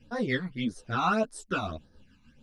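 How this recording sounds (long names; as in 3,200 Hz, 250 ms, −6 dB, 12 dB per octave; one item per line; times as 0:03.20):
phaser sweep stages 12, 1.7 Hz, lowest notch 520–2,700 Hz
tremolo triangle 6.7 Hz, depth 50%
a shimmering, thickened sound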